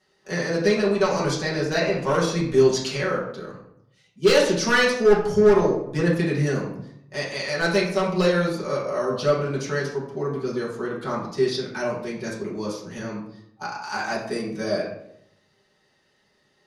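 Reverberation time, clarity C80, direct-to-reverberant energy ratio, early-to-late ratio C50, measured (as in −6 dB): 0.75 s, 8.0 dB, −7.0 dB, 4.5 dB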